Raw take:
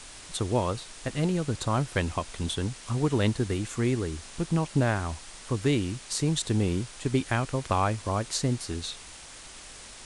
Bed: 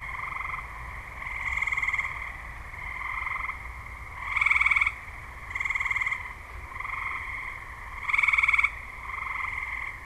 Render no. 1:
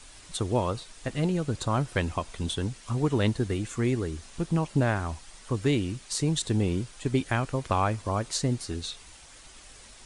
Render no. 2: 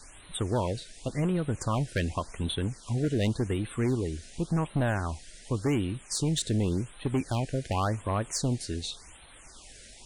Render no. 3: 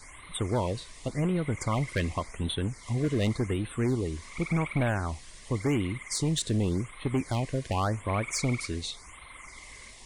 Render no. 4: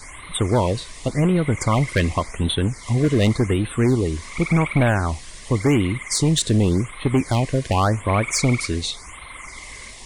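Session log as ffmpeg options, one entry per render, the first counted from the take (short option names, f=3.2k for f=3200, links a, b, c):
-af "afftdn=nr=7:nf=-46"
-af "volume=22dB,asoftclip=hard,volume=-22dB,afftfilt=real='re*(1-between(b*sr/1024,960*pow(6100/960,0.5+0.5*sin(2*PI*0.89*pts/sr))/1.41,960*pow(6100/960,0.5+0.5*sin(2*PI*0.89*pts/sr))*1.41))':imag='im*(1-between(b*sr/1024,960*pow(6100/960,0.5+0.5*sin(2*PI*0.89*pts/sr))/1.41,960*pow(6100/960,0.5+0.5*sin(2*PI*0.89*pts/sr))*1.41))':win_size=1024:overlap=0.75"
-filter_complex "[1:a]volume=-17dB[a];[0:a][a]amix=inputs=2:normalize=0"
-af "volume=9.5dB"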